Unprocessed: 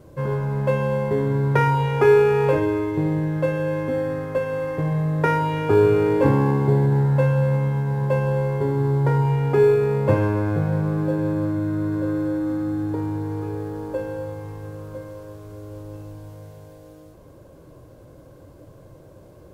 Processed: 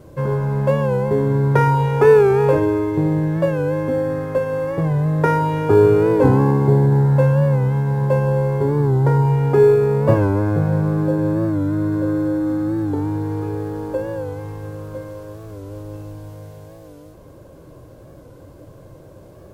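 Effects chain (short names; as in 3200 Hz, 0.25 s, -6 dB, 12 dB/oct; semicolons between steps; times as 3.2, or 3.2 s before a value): dynamic EQ 2600 Hz, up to -7 dB, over -43 dBFS, Q 1.1; record warp 45 rpm, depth 100 cents; gain +4 dB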